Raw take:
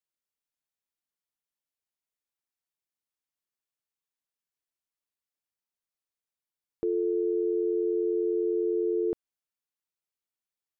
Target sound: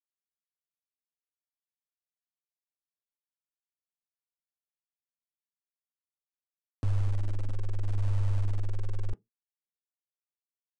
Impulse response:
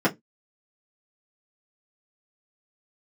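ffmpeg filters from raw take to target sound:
-filter_complex "[0:a]highpass=63,alimiter=level_in=2.37:limit=0.0631:level=0:latency=1:release=340,volume=0.422,afreqshift=-340,aecho=1:1:684:0.0841,aphaser=in_gain=1:out_gain=1:delay=3.2:decay=0.47:speed=0.73:type=sinusoidal,aeval=exprs='val(0)*gte(abs(val(0)),0.00531)':c=same,asplit=2[s0][s1];[s1]asuperstop=centerf=720:order=4:qfactor=5[s2];[1:a]atrim=start_sample=2205[s3];[s2][s3]afir=irnorm=-1:irlink=0,volume=0.0473[s4];[s0][s4]amix=inputs=2:normalize=0,aresample=22050,aresample=44100,volume=2.51"

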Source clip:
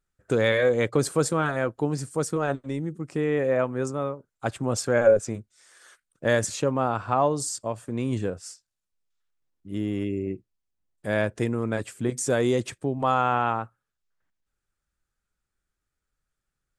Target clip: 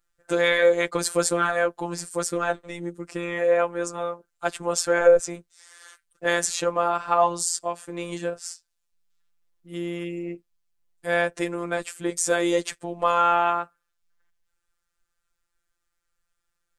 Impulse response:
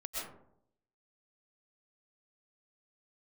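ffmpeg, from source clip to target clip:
-af "equalizer=f=150:w=0.65:g=-14,afftfilt=real='hypot(re,im)*cos(PI*b)':imag='0':win_size=1024:overlap=0.75,volume=2.66"

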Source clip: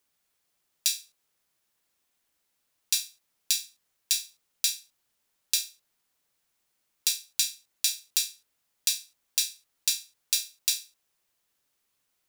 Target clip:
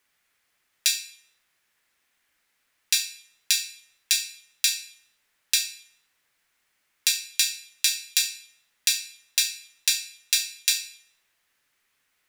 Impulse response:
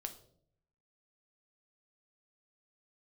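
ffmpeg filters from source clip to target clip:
-filter_complex "[0:a]equalizer=f=1900:w=1:g=11,asplit=2[s0][s1];[1:a]atrim=start_sample=2205,asetrate=27783,aresample=44100[s2];[s1][s2]afir=irnorm=-1:irlink=0,volume=1.58[s3];[s0][s3]amix=inputs=2:normalize=0,volume=0.501"

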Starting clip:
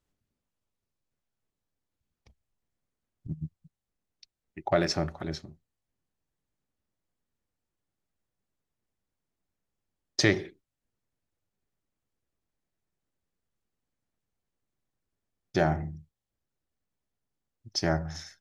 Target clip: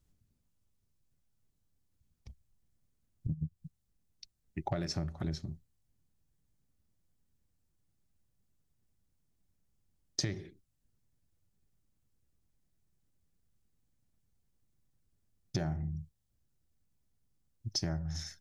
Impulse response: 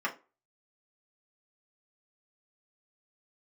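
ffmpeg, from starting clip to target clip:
-af "bass=f=250:g=13,treble=f=4000:g=7,acompressor=threshold=0.0355:ratio=12,volume=0.794"

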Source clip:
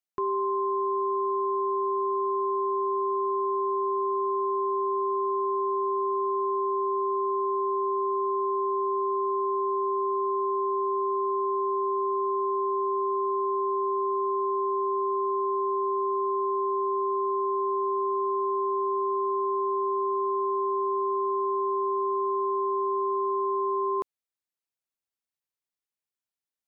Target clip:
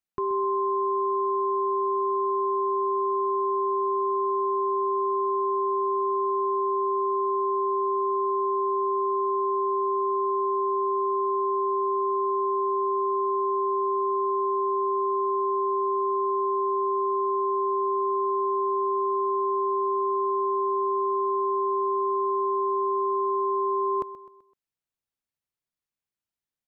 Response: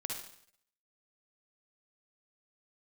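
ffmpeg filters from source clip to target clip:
-filter_complex "[0:a]bass=f=250:g=7,treble=f=4000:g=-3,asplit=2[s0][s1];[s1]aecho=0:1:128|256|384|512:0.178|0.0782|0.0344|0.0151[s2];[s0][s2]amix=inputs=2:normalize=0"

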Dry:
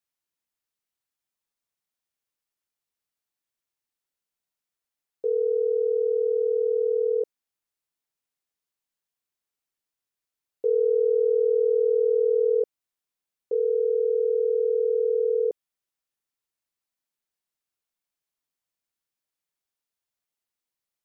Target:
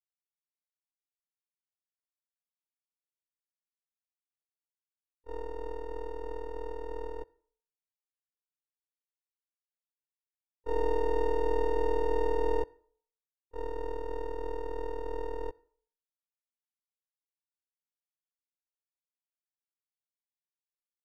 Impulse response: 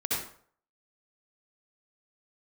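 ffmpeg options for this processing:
-filter_complex "[0:a]aeval=exprs='max(val(0),0)':c=same,asplit=3[s0][s1][s2];[s1]asetrate=29433,aresample=44100,atempo=1.49831,volume=0.2[s3];[s2]asetrate=35002,aresample=44100,atempo=1.25992,volume=0.158[s4];[s0][s3][s4]amix=inputs=3:normalize=0,agate=range=0.00891:threshold=0.0794:ratio=16:detection=peak,asplit=2[s5][s6];[1:a]atrim=start_sample=2205,lowshelf=f=360:g=-6[s7];[s6][s7]afir=irnorm=-1:irlink=0,volume=0.0316[s8];[s5][s8]amix=inputs=2:normalize=0,volume=0.794"

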